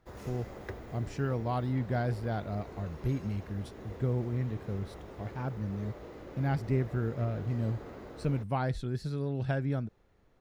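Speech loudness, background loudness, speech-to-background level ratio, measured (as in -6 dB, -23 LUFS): -34.5 LUFS, -47.0 LUFS, 12.5 dB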